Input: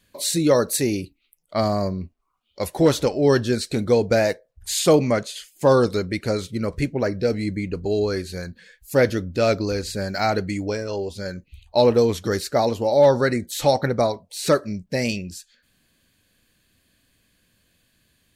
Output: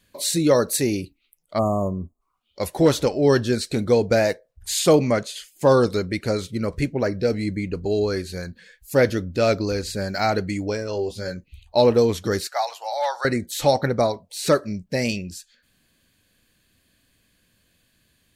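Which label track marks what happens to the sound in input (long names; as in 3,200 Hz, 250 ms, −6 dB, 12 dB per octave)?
1.580000	2.210000	time-frequency box erased 1,300–6,400 Hz
10.940000	11.350000	double-tracking delay 18 ms −6.5 dB
12.470000	13.250000	Chebyshev high-pass filter 720 Hz, order 4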